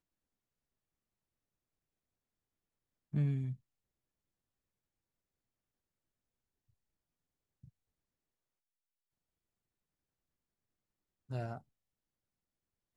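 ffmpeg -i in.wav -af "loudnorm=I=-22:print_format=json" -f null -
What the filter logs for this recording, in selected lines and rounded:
"input_i" : "-39.8",
"input_tp" : "-24.0",
"input_lra" : "7.8",
"input_thresh" : "-50.6",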